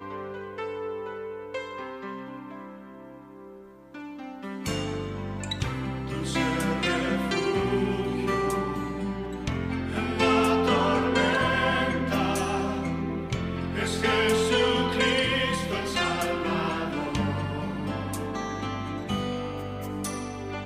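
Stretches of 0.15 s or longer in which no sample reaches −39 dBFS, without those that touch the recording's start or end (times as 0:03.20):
0:03.62–0:03.95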